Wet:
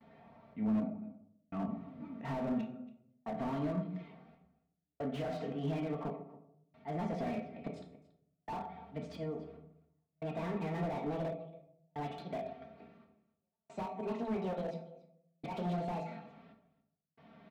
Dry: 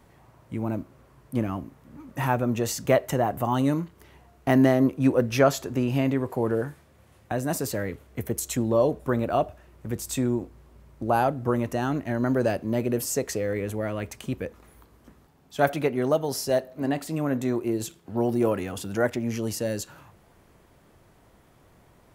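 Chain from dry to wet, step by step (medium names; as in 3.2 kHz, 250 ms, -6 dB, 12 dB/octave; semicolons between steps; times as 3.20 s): gliding tape speed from 94% -> 159%; gate with hold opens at -53 dBFS; comb 4.4 ms, depth 78%; peak limiter -16 dBFS, peak gain reduction 10.5 dB; slow attack 110 ms; compression 4:1, threshold -29 dBFS, peak gain reduction 8.5 dB; cabinet simulation 140–3400 Hz, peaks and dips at 320 Hz -4 dB, 470 Hz -8 dB, 660 Hz +4 dB, 1 kHz -7 dB, 1.6 kHz -8 dB, 2.9 kHz -6 dB; trance gate "xxxx...x" 69 bpm -60 dB; delay 281 ms -20 dB; on a send at -2 dB: reverberation RT60 0.70 s, pre-delay 3 ms; on the sum: slew-rate limiter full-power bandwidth 16 Hz; trim -3.5 dB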